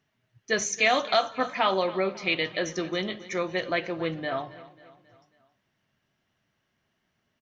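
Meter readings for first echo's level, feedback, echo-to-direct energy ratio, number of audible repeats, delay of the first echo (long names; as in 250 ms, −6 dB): −18.0 dB, 50%, −17.0 dB, 3, 271 ms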